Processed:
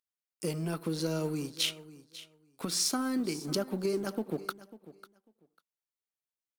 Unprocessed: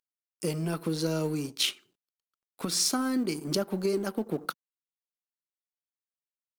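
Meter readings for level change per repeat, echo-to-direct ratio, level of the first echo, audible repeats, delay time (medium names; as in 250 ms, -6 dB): -15.5 dB, -17.0 dB, -17.0 dB, 2, 546 ms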